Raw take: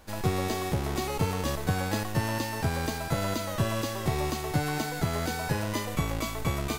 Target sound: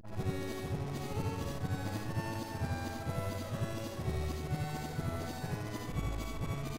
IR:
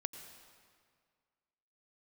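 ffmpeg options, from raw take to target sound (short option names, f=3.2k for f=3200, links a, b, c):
-filter_complex "[0:a]afftfilt=real='re':imag='-im':win_size=8192:overlap=0.75,lowshelf=f=290:g=6.5,asplit=2[a][b];[b]adelay=653,lowpass=f=1.3k:p=1,volume=-12.5dB,asplit=2[c][d];[d]adelay=653,lowpass=f=1.3k:p=1,volume=0.26,asplit=2[e][f];[f]adelay=653,lowpass=f=1.3k:p=1,volume=0.26[g];[a][c][e][g]amix=inputs=4:normalize=0,anlmdn=0.158,volume=-7dB"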